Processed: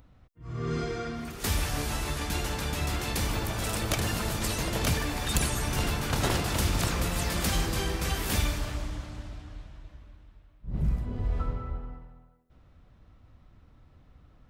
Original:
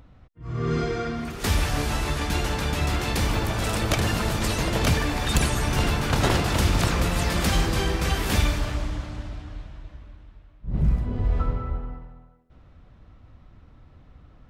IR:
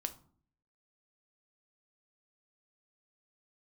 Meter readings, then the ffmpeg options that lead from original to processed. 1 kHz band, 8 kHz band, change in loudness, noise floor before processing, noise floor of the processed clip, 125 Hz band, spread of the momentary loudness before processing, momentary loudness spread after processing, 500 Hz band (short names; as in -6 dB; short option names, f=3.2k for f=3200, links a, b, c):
-6.0 dB, -1.0 dB, -5.0 dB, -53 dBFS, -59 dBFS, -6.0 dB, 13 LU, 13 LU, -6.0 dB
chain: -af "highshelf=f=7k:g=9,volume=-6dB"